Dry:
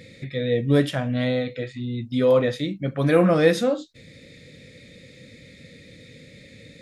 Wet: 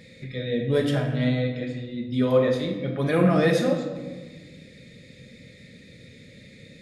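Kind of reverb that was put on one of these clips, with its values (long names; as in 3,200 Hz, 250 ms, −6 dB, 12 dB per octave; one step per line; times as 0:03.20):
rectangular room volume 1,100 cubic metres, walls mixed, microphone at 1.3 metres
level −4 dB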